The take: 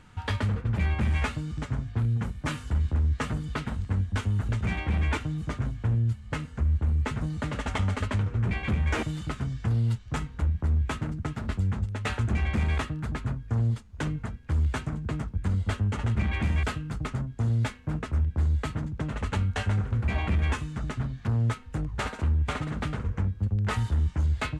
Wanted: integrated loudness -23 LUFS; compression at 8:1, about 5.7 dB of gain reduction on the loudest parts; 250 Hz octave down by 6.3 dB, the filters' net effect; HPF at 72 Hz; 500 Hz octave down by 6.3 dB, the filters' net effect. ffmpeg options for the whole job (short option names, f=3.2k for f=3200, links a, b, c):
-af "highpass=72,equalizer=f=250:t=o:g=-8.5,equalizer=f=500:t=o:g=-5.5,acompressor=threshold=-30dB:ratio=8,volume=13dB"